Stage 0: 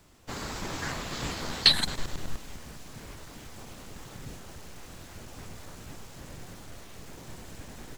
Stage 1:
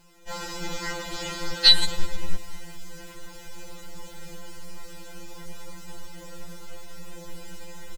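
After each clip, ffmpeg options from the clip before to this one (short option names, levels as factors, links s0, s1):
-af "bandreject=f=1100:w=11,aecho=1:1:3.8:0.75,afftfilt=real='re*2.83*eq(mod(b,8),0)':imag='im*2.83*eq(mod(b,8),0)':win_size=2048:overlap=0.75,volume=1.41"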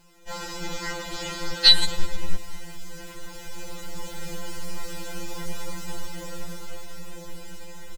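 -af "dynaudnorm=f=320:g=11:m=2.51"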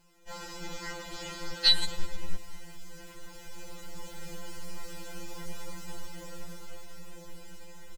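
-af "bandreject=f=3700:w=22,volume=0.422"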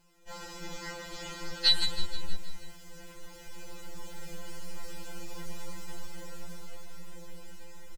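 -af "aecho=1:1:159|318|477|636|795|954:0.251|0.143|0.0816|0.0465|0.0265|0.0151,volume=0.841"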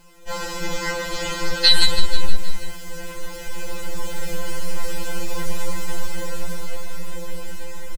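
-af "aecho=1:1:3.9:0.42,alimiter=level_in=5.62:limit=0.891:release=50:level=0:latency=1,volume=0.891"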